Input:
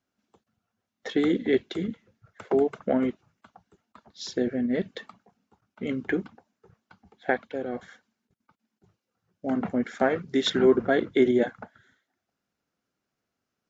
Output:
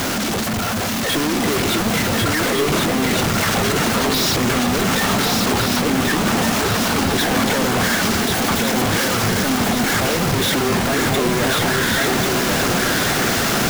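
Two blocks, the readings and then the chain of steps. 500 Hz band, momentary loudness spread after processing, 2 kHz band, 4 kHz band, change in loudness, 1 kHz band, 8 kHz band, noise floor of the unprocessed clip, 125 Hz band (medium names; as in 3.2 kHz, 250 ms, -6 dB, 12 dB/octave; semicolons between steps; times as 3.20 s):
+6.0 dB, 1 LU, +17.0 dB, +19.0 dB, +9.0 dB, +17.0 dB, no reading, -84 dBFS, +19.5 dB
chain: one-bit comparator; shuffle delay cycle 1455 ms, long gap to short 3:1, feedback 47%, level -3 dB; trim +8.5 dB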